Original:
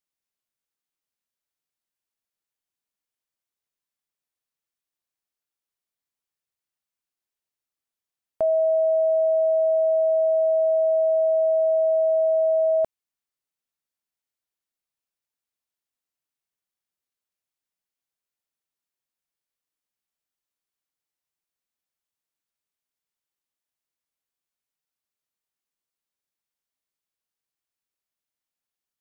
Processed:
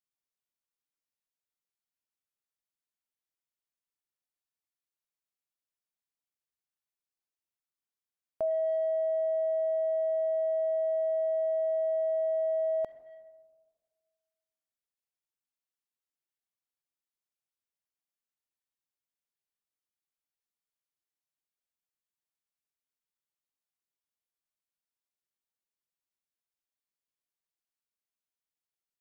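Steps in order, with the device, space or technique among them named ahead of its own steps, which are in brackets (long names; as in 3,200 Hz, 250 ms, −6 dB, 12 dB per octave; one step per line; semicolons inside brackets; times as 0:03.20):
saturated reverb return (on a send at −13.5 dB: convolution reverb RT60 1.5 s, pre-delay 41 ms + soft clipping −25 dBFS, distortion −15 dB)
on the sum: level −8 dB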